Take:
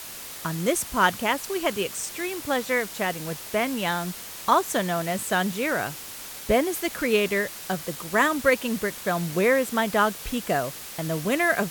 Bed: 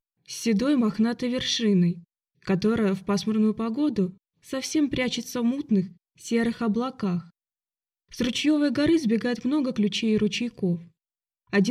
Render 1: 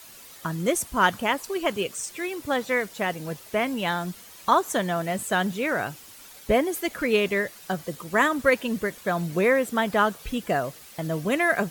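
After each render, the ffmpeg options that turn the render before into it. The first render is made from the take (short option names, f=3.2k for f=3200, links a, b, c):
-af "afftdn=nr=10:nf=-39"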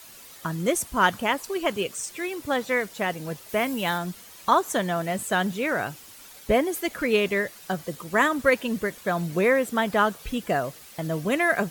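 -filter_complex "[0:a]asettb=1/sr,asplit=3[a][b][c];[a]atrim=end=3.494[d];[b]atrim=start=3.49:end=3.98,asetpts=PTS-STARTPTS,afade=t=in:d=0.004:c=qsin,afade=t=out:st=0.486:d=0.004:c=qsin,highshelf=f=8.7k:g=9[e];[c]atrim=start=3.976[f];[d][e]acrossfade=d=0.004:c1=hsin:c2=qsin[g];[g][f]acrossfade=d=0.004:c1=qsin:c2=hsin"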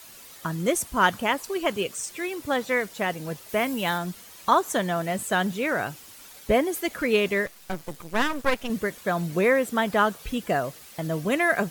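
-filter_complex "[0:a]asettb=1/sr,asplit=3[a][b][c];[a]atrim=end=7.464[d];[b]atrim=start=7.46:end=8.7,asetpts=PTS-STARTPTS,afade=t=in:d=0.004:c=qsin,afade=t=out:st=1.236:d=0.004:c=qsin,aeval=exprs='max(val(0),0)':c=same[e];[c]atrim=start=8.696[f];[d][e]acrossfade=d=0.004:c1=hsin:c2=qsin[g];[g][f]acrossfade=d=0.004:c1=qsin:c2=hsin"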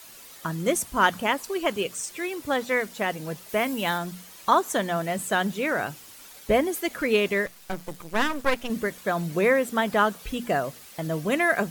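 -af "equalizer=f=92:t=o:w=0.77:g=-3,bandreject=f=60:t=h:w=6,bandreject=f=120:t=h:w=6,bandreject=f=180:t=h:w=6,bandreject=f=240:t=h:w=6"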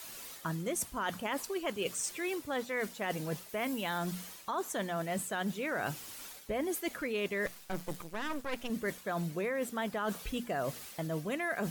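-af "alimiter=limit=-15.5dB:level=0:latency=1:release=83,areverse,acompressor=threshold=-32dB:ratio=6,areverse"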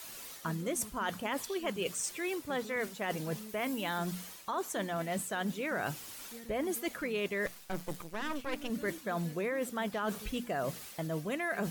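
-filter_complex "[1:a]volume=-26.5dB[a];[0:a][a]amix=inputs=2:normalize=0"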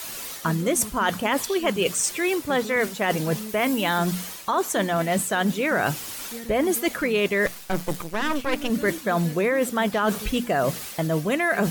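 -af "volume=12dB"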